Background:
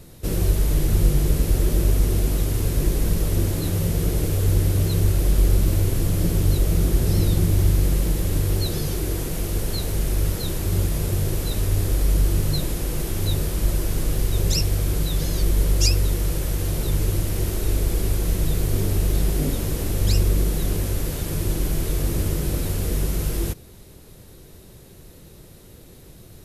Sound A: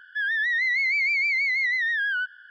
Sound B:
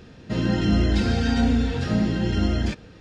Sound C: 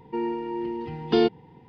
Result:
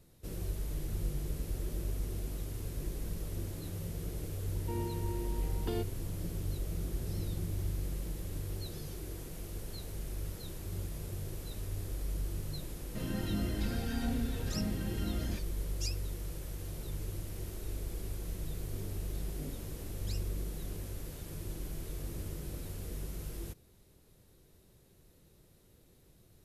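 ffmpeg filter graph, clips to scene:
-filter_complex "[0:a]volume=-17.5dB[a];[3:a]alimiter=limit=-16dB:level=0:latency=1:release=339,atrim=end=1.68,asetpts=PTS-STARTPTS,volume=-11.5dB,afade=t=in:d=0.004:c=hsin,afade=t=out:st=1.676:d=0.004:c=hsin,adelay=4550[b];[2:a]atrim=end=3,asetpts=PTS-STARTPTS,volume=-14.5dB,afade=t=in:d=0.004:c=hsin,afade=t=out:st=2.996:d=0.004:c=hsin,adelay=12650[c];[a][b][c]amix=inputs=3:normalize=0"

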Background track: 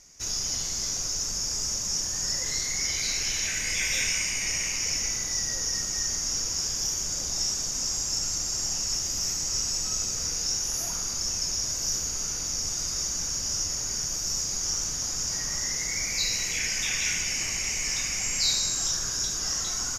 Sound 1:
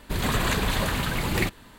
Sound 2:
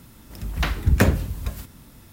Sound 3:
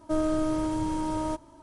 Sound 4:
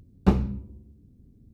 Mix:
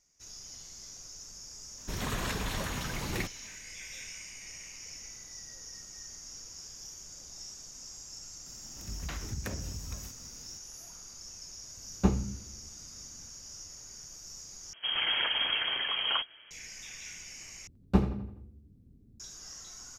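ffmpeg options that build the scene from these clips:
-filter_complex "[1:a]asplit=2[a][b];[4:a]asplit=2[c][d];[0:a]volume=-17.5dB[e];[2:a]acompressor=threshold=-24dB:ratio=6:attack=3.2:release=140:knee=1:detection=peak[f];[b]lowpass=f=2.8k:t=q:w=0.5098,lowpass=f=2.8k:t=q:w=0.6013,lowpass=f=2.8k:t=q:w=0.9,lowpass=f=2.8k:t=q:w=2.563,afreqshift=-3300[g];[d]asplit=2[h][i];[i]adelay=84,lowpass=f=4.8k:p=1,volume=-12dB,asplit=2[j][k];[k]adelay=84,lowpass=f=4.8k:p=1,volume=0.49,asplit=2[l][m];[m]adelay=84,lowpass=f=4.8k:p=1,volume=0.49,asplit=2[n][o];[o]adelay=84,lowpass=f=4.8k:p=1,volume=0.49,asplit=2[p][q];[q]adelay=84,lowpass=f=4.8k:p=1,volume=0.49[r];[h][j][l][n][p][r]amix=inputs=6:normalize=0[s];[e]asplit=3[t][u][v];[t]atrim=end=14.734[w];[g]atrim=end=1.78,asetpts=PTS-STARTPTS,volume=-5.5dB[x];[u]atrim=start=16.506:end=17.674[y];[s]atrim=end=1.53,asetpts=PTS-STARTPTS,volume=-4.5dB[z];[v]atrim=start=19.196[aa];[a]atrim=end=1.78,asetpts=PTS-STARTPTS,volume=-9.5dB,afade=t=in:d=0.004:c=hsin,afade=t=out:st=1.776:d=0.004:c=hsin,adelay=1780[ab];[f]atrim=end=2.12,asetpts=PTS-STARTPTS,volume=-9.5dB,afade=t=in:d=0.004:c=hsin,afade=t=out:st=2.116:d=0.004:c=hsin,adelay=8460[ac];[c]atrim=end=1.53,asetpts=PTS-STARTPTS,volume=-5.5dB,afade=t=in:d=0.004:c=hsin,afade=t=out:st=1.526:d=0.004:c=hsin,adelay=11770[ad];[w][x]acrossfade=d=0.004:c1=hsin:c2=hsin[ae];[ae][y]acrossfade=d=0.004:c1=hsin:c2=hsin[af];[af][z]acrossfade=d=0.004:c1=hsin:c2=hsin[ag];[ag][aa]acrossfade=d=0.004:c1=hsin:c2=hsin[ah];[ah][ab][ac][ad]amix=inputs=4:normalize=0"

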